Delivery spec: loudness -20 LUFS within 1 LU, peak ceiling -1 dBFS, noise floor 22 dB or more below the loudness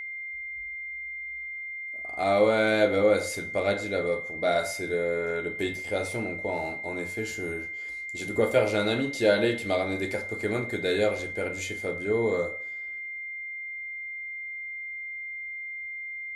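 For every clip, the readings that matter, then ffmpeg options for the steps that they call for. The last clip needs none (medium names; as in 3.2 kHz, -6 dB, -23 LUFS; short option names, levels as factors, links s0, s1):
steady tone 2.1 kHz; tone level -34 dBFS; loudness -28.5 LUFS; peak level -8.0 dBFS; loudness target -20.0 LUFS
-> -af "bandreject=f=2100:w=30"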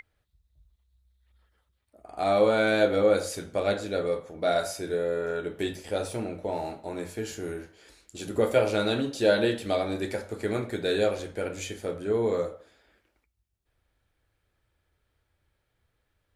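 steady tone not found; loudness -28.0 LUFS; peak level -8.0 dBFS; loudness target -20.0 LUFS
-> -af "volume=2.51,alimiter=limit=0.891:level=0:latency=1"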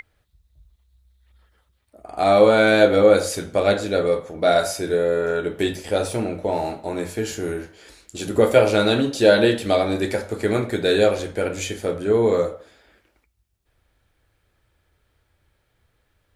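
loudness -20.0 LUFS; peak level -1.0 dBFS; noise floor -69 dBFS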